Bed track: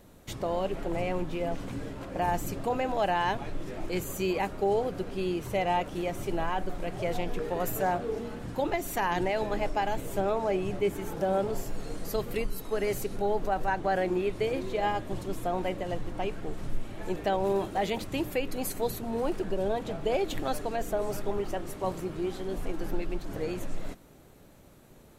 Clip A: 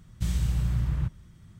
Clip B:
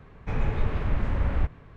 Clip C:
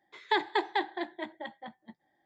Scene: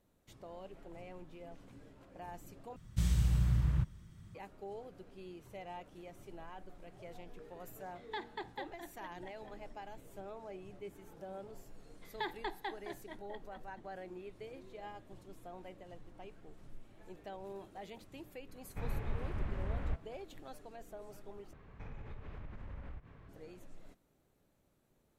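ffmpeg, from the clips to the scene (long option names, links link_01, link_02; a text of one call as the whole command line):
ffmpeg -i bed.wav -i cue0.wav -i cue1.wav -i cue2.wav -filter_complex "[3:a]asplit=2[link_01][link_02];[2:a]asplit=2[link_03][link_04];[0:a]volume=-19.5dB[link_05];[link_04]acompressor=threshold=-36dB:ratio=6:attack=3.2:release=140:knee=1:detection=peak[link_06];[link_05]asplit=3[link_07][link_08][link_09];[link_07]atrim=end=2.764[link_10];[1:a]atrim=end=1.59,asetpts=PTS-STARTPTS,volume=-3.5dB[link_11];[link_08]atrim=start=4.346:end=21.534[link_12];[link_06]atrim=end=1.76,asetpts=PTS-STARTPTS,volume=-7.5dB[link_13];[link_09]atrim=start=23.286[link_14];[link_01]atrim=end=2.25,asetpts=PTS-STARTPTS,volume=-15dB,afade=type=in:duration=0.004:curve=hsin,afade=type=out:start_time=2.246:duration=0.004:curve=hsin,adelay=7820[link_15];[link_02]atrim=end=2.25,asetpts=PTS-STARTPTS,volume=-12dB,afade=type=in:duration=0.004:curve=hsin,afade=type=out:start_time=2.246:duration=0.004:curve=hsin,adelay=11890[link_16];[link_03]atrim=end=1.76,asetpts=PTS-STARTPTS,volume=-12dB,afade=type=in:duration=0.004:curve=hsin,afade=type=out:start_time=1.756:duration=0.004:curve=hsin,adelay=18490[link_17];[link_10][link_11]acrossfade=duration=0.004:curve1=hsin:curve2=hsin[link_18];[link_18][link_12]acrossfade=duration=0.004:curve1=hsin:curve2=hsin[link_19];[link_19][link_13]acrossfade=duration=0.004:curve1=hsin:curve2=hsin[link_20];[link_20][link_14]acrossfade=duration=0.004:curve1=hsin:curve2=hsin[link_21];[link_21][link_15][link_16][link_17]amix=inputs=4:normalize=0" out.wav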